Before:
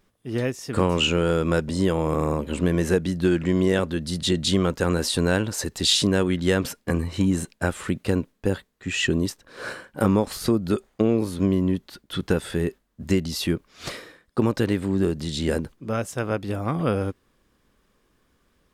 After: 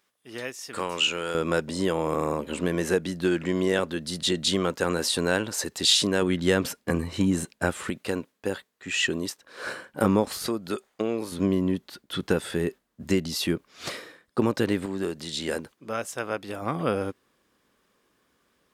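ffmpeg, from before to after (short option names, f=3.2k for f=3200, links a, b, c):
-af "asetnsamples=n=441:p=0,asendcmd='1.35 highpass f 350;6.22 highpass f 150;7.9 highpass f 530;9.67 highpass f 170;10.47 highpass f 700;11.32 highpass f 200;14.86 highpass f 620;16.62 highpass f 290',highpass=f=1.3k:p=1"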